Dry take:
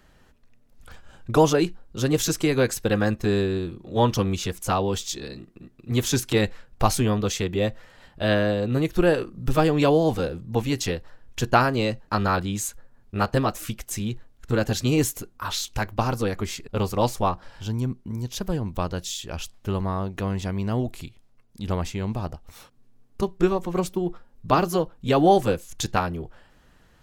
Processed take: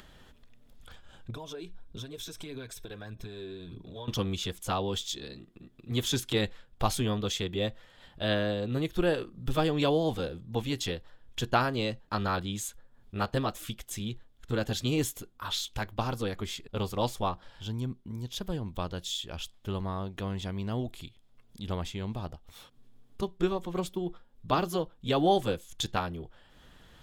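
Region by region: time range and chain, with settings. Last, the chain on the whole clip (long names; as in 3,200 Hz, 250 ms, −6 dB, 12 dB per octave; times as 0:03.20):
0:01.30–0:04.08: EQ curve with evenly spaced ripples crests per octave 1.6, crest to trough 7 dB + downward compressor, threshold −33 dBFS + phase shifter 1.6 Hz, feedback 39%
whole clip: parametric band 3,400 Hz +10 dB 0.3 octaves; notch filter 5,900 Hz, Q 24; upward compression, threshold −37 dBFS; level −7.5 dB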